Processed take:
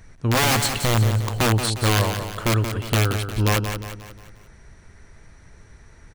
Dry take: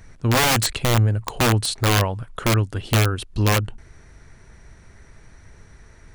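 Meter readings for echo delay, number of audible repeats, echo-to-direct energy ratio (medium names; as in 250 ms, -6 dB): 178 ms, 5, -7.0 dB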